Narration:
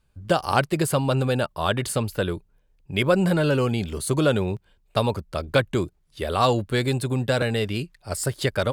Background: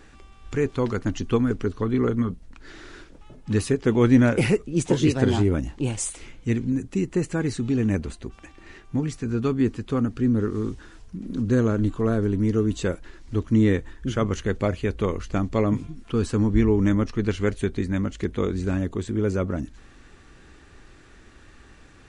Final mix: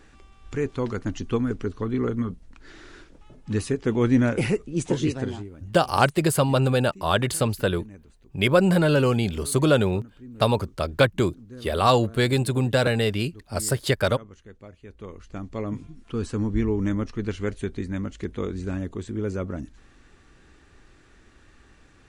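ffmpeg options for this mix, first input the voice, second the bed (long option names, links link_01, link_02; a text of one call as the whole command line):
ffmpeg -i stem1.wav -i stem2.wav -filter_complex "[0:a]adelay=5450,volume=1.5dB[link_01];[1:a]volume=14dB,afade=type=out:start_time=4.98:duration=0.51:silence=0.11885,afade=type=in:start_time=14.8:duration=1.45:silence=0.141254[link_02];[link_01][link_02]amix=inputs=2:normalize=0" out.wav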